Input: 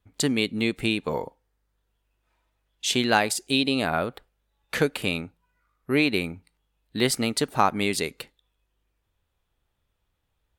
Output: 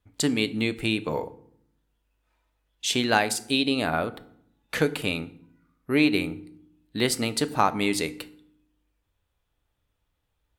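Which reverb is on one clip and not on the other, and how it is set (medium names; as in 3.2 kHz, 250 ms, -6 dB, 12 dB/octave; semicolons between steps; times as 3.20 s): FDN reverb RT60 0.67 s, low-frequency decay 1.55×, high-frequency decay 0.7×, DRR 12.5 dB; trim -1 dB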